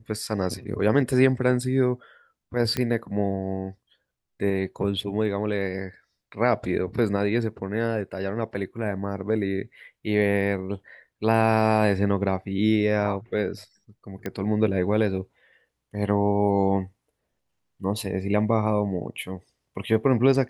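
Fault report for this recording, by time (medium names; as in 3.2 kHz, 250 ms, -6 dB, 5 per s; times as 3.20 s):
2.77 s: pop -11 dBFS
14.26 s: pop -16 dBFS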